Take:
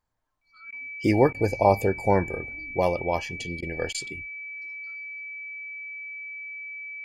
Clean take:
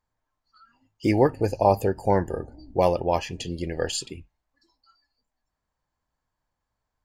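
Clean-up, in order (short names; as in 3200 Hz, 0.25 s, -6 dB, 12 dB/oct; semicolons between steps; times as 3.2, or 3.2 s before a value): notch 2300 Hz, Q 30; interpolate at 0.71/1.33/3.61/3.93, 13 ms; gain correction +3 dB, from 2.28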